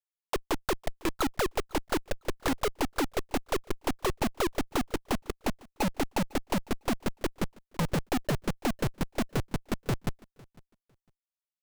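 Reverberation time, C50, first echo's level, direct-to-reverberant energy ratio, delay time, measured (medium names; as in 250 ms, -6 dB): no reverb, no reverb, -24.0 dB, no reverb, 503 ms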